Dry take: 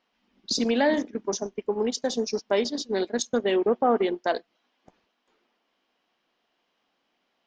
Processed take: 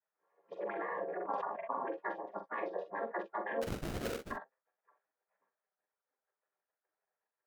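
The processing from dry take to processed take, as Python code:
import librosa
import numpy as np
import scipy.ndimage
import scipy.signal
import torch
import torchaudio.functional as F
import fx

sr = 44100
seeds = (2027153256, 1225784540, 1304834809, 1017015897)

p1 = fx.chord_vocoder(x, sr, chord='minor triad', root=58)
p2 = fx.spec_gate(p1, sr, threshold_db=-20, keep='weak')
p3 = scipy.signal.sosfilt(scipy.signal.cheby1(3, 1.0, [230.0, 1600.0], 'bandpass', fs=sr, output='sos'), p2)
p4 = fx.peak_eq(p3, sr, hz=530.0, db=5.0, octaves=0.48)
p5 = fx.over_compress(p4, sr, threshold_db=-47.0, ratio=-1.0)
p6 = p4 + (p5 * librosa.db_to_amplitude(1.5))
p7 = fx.hpss(p6, sr, part='percussive', gain_db=8)
p8 = fx.sample_hold(p7, sr, seeds[0], rate_hz=1000.0, jitter_pct=20, at=(3.61, 4.3), fade=0.02)
p9 = fx.vibrato(p8, sr, rate_hz=3.6, depth_cents=51.0)
p10 = p9 + fx.room_early_taps(p9, sr, ms=(44, 59), db=(-8.0, -15.0), dry=0)
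p11 = fx.sustainer(p10, sr, db_per_s=23.0, at=(1.07, 1.87), fade=0.02)
y = p11 * librosa.db_to_amplitude(-4.5)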